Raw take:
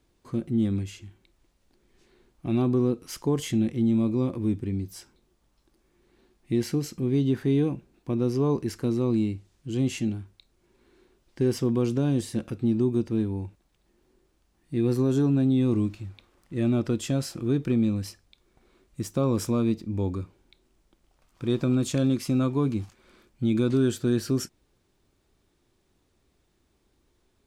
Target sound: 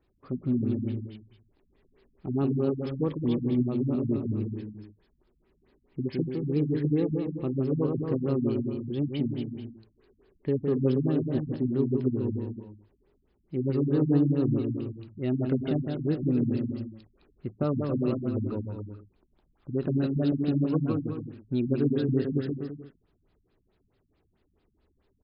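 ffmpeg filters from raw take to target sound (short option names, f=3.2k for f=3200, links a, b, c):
-af "asetrate=48000,aresample=44100,aecho=1:1:160|280|370|437.5|488.1:0.631|0.398|0.251|0.158|0.1,afftfilt=real='re*lt(b*sr/1024,240*pow(5300/240,0.5+0.5*sin(2*PI*4.6*pts/sr)))':imag='im*lt(b*sr/1024,240*pow(5300/240,0.5+0.5*sin(2*PI*4.6*pts/sr)))':win_size=1024:overlap=0.75,volume=-3dB"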